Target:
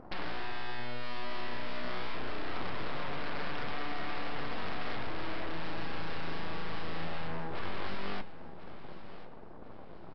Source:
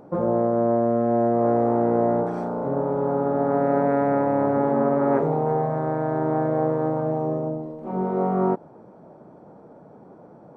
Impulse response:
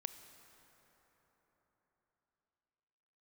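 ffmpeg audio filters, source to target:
-filter_complex "[0:a]equalizer=f=920:w=0.32:g=-8.5,bandreject=f=50:t=h:w=6,bandreject=f=100:t=h:w=6,bandreject=f=150:t=h:w=6,bandreject=f=200:t=h:w=6,bandreject=f=250:t=h:w=6,bandreject=f=300:t=h:w=6,bandreject=f=350:t=h:w=6,acompressor=threshold=-31dB:ratio=6,aeval=exprs='0.0794*(cos(1*acos(clip(val(0)/0.0794,-1,1)))-cos(1*PI/2))+0.0224*(cos(4*acos(clip(val(0)/0.0794,-1,1)))-cos(4*PI/2))+0.0178*(cos(7*acos(clip(val(0)/0.0794,-1,1)))-cos(7*PI/2))+0.0398*(cos(8*acos(clip(val(0)/0.0794,-1,1)))-cos(8*PI/2))':c=same,asoftclip=type=hard:threshold=-33.5dB,flanger=delay=7.9:depth=5:regen=79:speed=1.3:shape=triangular,asplit=2[a][b];[b]aecho=0:1:1087|2174|3261|4348:0.178|0.0711|0.0285|0.0114[c];[a][c]amix=inputs=2:normalize=0,aresample=11025,aresample=44100,asetrate=45938,aresample=44100,volume=6dB"

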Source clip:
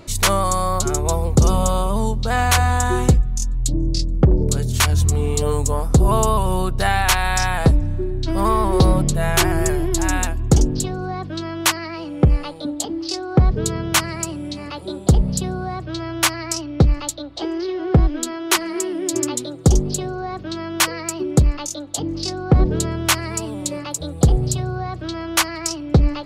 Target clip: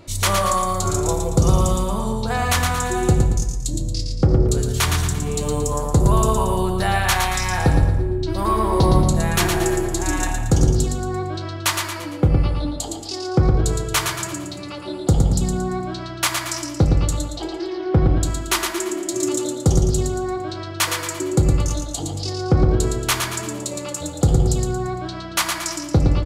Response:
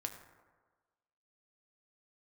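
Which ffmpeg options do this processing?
-filter_complex "[0:a]aecho=1:1:114|228|342|456|570:0.562|0.247|0.109|0.0479|0.0211[a];[1:a]atrim=start_sample=2205,afade=t=out:st=0.39:d=0.01,atrim=end_sample=17640[b];[a][b]afir=irnorm=-1:irlink=0,volume=-1dB"

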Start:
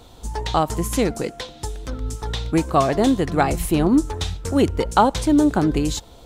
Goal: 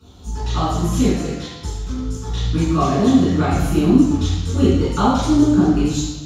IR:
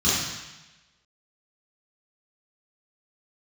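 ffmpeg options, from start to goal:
-filter_complex "[1:a]atrim=start_sample=2205[a];[0:a][a]afir=irnorm=-1:irlink=0,volume=-17dB"

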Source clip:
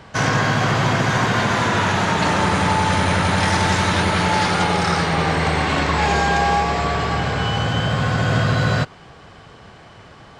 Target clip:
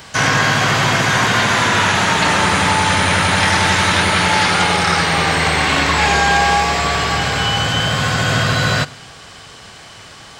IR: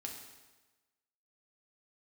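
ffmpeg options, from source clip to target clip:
-filter_complex "[0:a]crystalizer=i=7.5:c=0,acrossover=split=3200[a][b];[b]acompressor=threshold=-25dB:ratio=4:attack=1:release=60[c];[a][c]amix=inputs=2:normalize=0,asplit=2[d][e];[1:a]atrim=start_sample=2205[f];[e][f]afir=irnorm=-1:irlink=0,volume=-13.5dB[g];[d][g]amix=inputs=2:normalize=0,volume=-1dB"

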